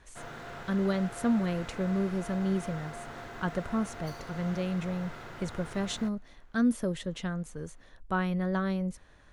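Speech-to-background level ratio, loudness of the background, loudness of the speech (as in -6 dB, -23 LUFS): 11.5 dB, -43.5 LUFS, -32.0 LUFS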